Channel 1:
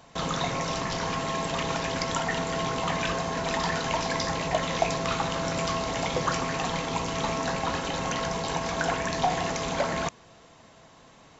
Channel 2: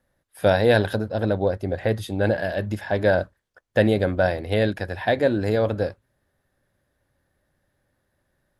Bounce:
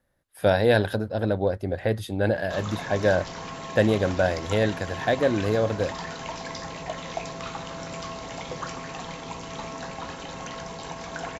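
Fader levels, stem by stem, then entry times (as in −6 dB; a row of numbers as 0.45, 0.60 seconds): −7.0, −2.0 decibels; 2.35, 0.00 seconds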